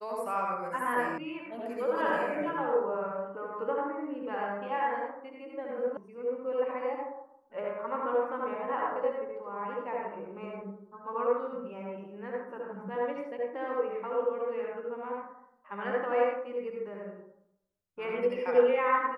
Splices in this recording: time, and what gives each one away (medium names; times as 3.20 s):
1.18 s: sound stops dead
5.97 s: sound stops dead